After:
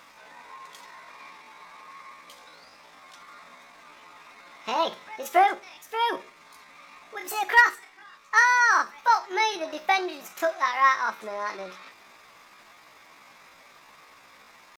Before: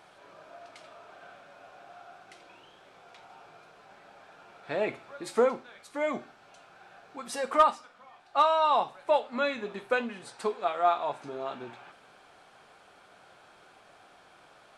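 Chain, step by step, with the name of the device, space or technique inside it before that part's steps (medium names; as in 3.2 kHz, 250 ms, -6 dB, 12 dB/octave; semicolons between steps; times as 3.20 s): chipmunk voice (pitch shift +7.5 st); trim +4.5 dB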